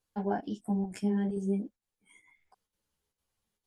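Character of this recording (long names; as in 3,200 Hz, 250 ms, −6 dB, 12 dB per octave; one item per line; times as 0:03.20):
chopped level 2.2 Hz, depth 60%, duty 85%
a shimmering, thickened sound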